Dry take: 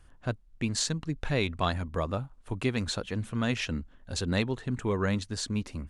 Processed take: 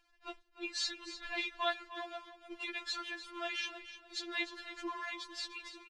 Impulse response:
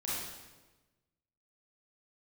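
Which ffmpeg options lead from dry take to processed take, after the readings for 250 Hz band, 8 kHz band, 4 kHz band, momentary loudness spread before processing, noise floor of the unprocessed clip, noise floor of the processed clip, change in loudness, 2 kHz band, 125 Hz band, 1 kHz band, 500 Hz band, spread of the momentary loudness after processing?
−17.5 dB, −11.5 dB, −3.0 dB, 7 LU, −58 dBFS, −69 dBFS, −8.0 dB, −3.0 dB, below −40 dB, −5.0 dB, −12.5 dB, 12 LU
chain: -filter_complex "[0:a]aeval=exprs='val(0)+0.5*0.0133*sgn(val(0))':channel_layout=same,lowpass=3500,lowshelf=frequency=96:gain=-10.5,agate=range=-14dB:threshold=-38dB:ratio=16:detection=peak,tiltshelf=frequency=1100:gain=-7,asplit=2[link_01][link_02];[link_02]aecho=0:1:300|600|900:0.237|0.064|0.0173[link_03];[link_01][link_03]amix=inputs=2:normalize=0,afftfilt=real='re*4*eq(mod(b,16),0)':imag='im*4*eq(mod(b,16),0)':win_size=2048:overlap=0.75,volume=-4.5dB"

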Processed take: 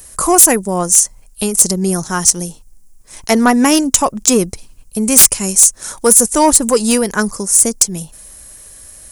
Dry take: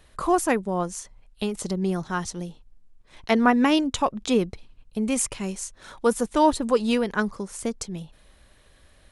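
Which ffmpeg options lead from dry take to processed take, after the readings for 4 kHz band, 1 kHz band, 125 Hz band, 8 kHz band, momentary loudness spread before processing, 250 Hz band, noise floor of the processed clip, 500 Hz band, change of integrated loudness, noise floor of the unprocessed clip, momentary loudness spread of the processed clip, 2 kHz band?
+12.5 dB, +7.5 dB, +8.5 dB, +24.5 dB, 15 LU, +8.5 dB, −43 dBFS, +8.0 dB, +13.5 dB, −57 dBFS, 12 LU, +8.0 dB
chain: -af "acontrast=52,aexciter=amount=10.6:drive=4.7:freq=5400,aeval=exprs='5.62*sin(PI/2*5.62*val(0)/5.62)':channel_layout=same,volume=-16dB"

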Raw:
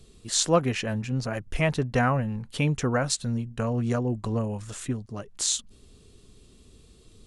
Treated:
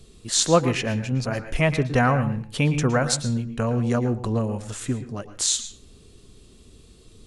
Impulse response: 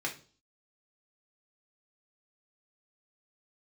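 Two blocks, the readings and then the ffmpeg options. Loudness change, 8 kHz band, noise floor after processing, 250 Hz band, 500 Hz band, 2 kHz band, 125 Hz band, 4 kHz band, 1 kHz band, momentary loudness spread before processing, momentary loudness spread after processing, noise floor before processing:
+4.0 dB, +3.5 dB, −51 dBFS, +4.0 dB, +4.0 dB, +4.0 dB, +4.0 dB, +3.5 dB, +4.0 dB, 9 LU, 10 LU, −55 dBFS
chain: -filter_complex "[0:a]asplit=2[link_01][link_02];[1:a]atrim=start_sample=2205,adelay=111[link_03];[link_02][link_03]afir=irnorm=-1:irlink=0,volume=-14.5dB[link_04];[link_01][link_04]amix=inputs=2:normalize=0,volume=3.5dB"

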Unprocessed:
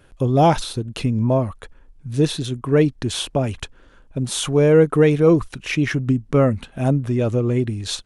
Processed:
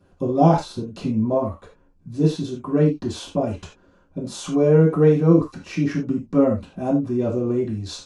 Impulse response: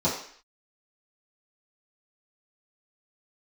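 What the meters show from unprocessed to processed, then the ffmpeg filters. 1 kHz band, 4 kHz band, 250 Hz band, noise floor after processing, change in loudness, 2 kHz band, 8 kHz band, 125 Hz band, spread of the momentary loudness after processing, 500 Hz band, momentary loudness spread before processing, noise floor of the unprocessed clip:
−2.0 dB, −9.5 dB, 0.0 dB, −57 dBFS, −1.5 dB, −9.5 dB, −9.0 dB, −2.5 dB, 14 LU, −2.0 dB, 12 LU, −51 dBFS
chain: -filter_complex "[1:a]atrim=start_sample=2205,afade=type=out:start_time=0.16:duration=0.01,atrim=end_sample=7497,asetrate=48510,aresample=44100[link_01];[0:a][link_01]afir=irnorm=-1:irlink=0,volume=-17dB"

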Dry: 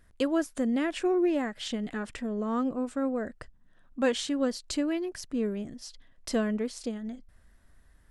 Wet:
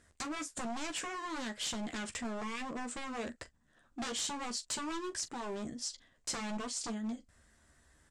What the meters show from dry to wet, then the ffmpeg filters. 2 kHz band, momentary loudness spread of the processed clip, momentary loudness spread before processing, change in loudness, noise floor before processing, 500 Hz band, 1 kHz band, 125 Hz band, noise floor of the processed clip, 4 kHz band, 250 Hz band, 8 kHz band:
−3.5 dB, 6 LU, 13 LU, −8.5 dB, −60 dBFS, −14.0 dB, −2.5 dB, can't be measured, −71 dBFS, −1.0 dB, −12.0 dB, +4.0 dB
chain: -af "highpass=frequency=110:poles=1,equalizer=frequency=170:width_type=o:width=0.46:gain=-3.5,acompressor=threshold=-31dB:ratio=3,aeval=exprs='0.0188*(abs(mod(val(0)/0.0188+3,4)-2)-1)':channel_layout=same,lowpass=frequency=7700:width_type=q:width=2.9,aecho=1:1:13|42:0.447|0.158" -ar 44100 -c:a libmp3lame -b:a 112k

